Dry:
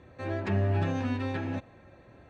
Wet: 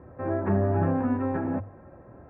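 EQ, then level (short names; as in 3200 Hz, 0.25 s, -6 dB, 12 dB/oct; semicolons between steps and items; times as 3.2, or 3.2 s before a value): LPF 1400 Hz 24 dB/oct; notches 50/100 Hz; +6.0 dB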